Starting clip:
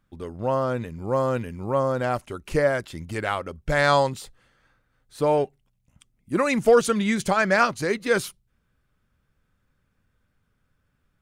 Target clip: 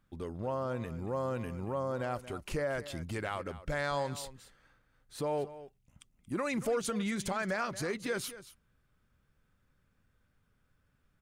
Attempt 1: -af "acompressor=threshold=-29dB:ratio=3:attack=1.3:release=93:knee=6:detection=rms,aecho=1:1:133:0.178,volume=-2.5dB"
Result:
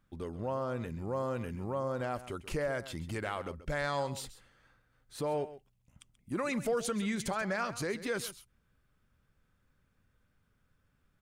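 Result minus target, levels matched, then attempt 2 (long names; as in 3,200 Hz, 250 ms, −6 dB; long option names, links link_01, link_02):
echo 97 ms early
-af "acompressor=threshold=-29dB:ratio=3:attack=1.3:release=93:knee=6:detection=rms,aecho=1:1:230:0.178,volume=-2.5dB"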